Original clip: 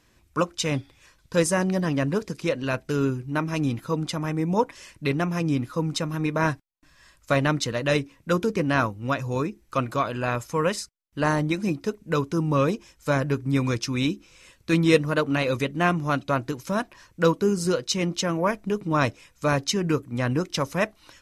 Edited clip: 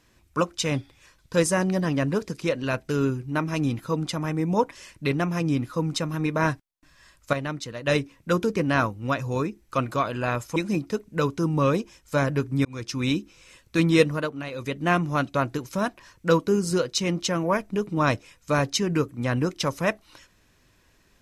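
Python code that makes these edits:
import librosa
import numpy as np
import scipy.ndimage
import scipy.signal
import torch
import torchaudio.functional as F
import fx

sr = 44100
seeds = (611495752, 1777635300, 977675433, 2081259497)

y = fx.edit(x, sr, fx.clip_gain(start_s=7.33, length_s=0.54, db=-8.0),
    fx.cut(start_s=10.56, length_s=0.94),
    fx.fade_in_span(start_s=13.59, length_s=0.37),
    fx.fade_down_up(start_s=15.02, length_s=0.75, db=-10.0, fade_s=0.26), tone=tone)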